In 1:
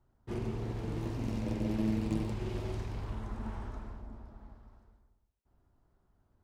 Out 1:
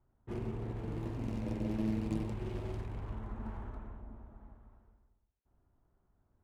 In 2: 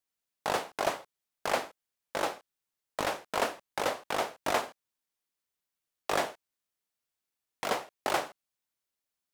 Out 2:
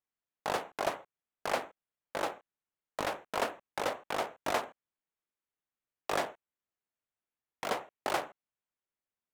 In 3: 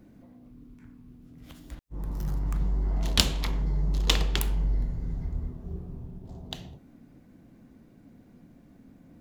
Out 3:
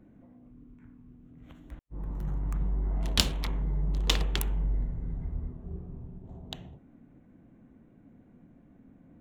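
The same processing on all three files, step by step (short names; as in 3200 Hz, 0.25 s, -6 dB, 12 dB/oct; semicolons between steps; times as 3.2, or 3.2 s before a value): Wiener smoothing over 9 samples; gain -2.5 dB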